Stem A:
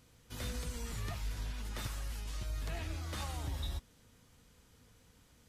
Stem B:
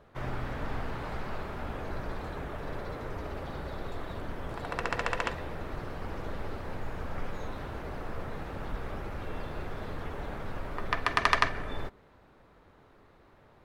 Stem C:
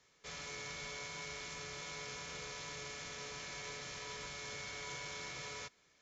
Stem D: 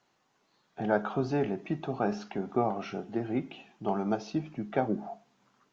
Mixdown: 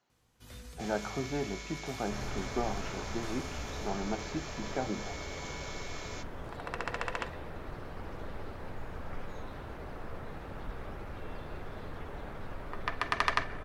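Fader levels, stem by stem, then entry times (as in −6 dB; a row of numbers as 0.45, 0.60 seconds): −8.5, −4.5, +0.5, −6.0 decibels; 0.10, 1.95, 0.55, 0.00 seconds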